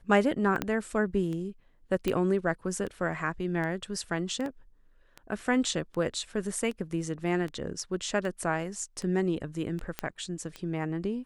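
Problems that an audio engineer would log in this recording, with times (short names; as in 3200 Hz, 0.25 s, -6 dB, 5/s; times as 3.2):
tick 78 rpm -25 dBFS
0.62 pop -14 dBFS
2.08 pop -15 dBFS
4.46 gap 2.1 ms
9.99 pop -14 dBFS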